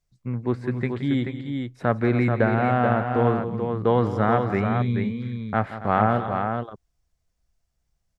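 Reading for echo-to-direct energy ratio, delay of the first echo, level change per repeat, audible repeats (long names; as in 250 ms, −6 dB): −4.5 dB, 172 ms, repeats not evenly spaced, 3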